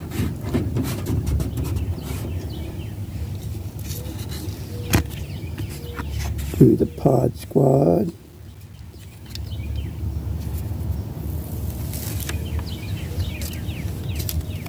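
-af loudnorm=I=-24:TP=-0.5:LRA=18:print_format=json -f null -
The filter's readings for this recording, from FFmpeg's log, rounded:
"input_i" : "-25.1",
"input_tp" : "-2.5",
"input_lra" : "8.9",
"input_thresh" : "-35.4",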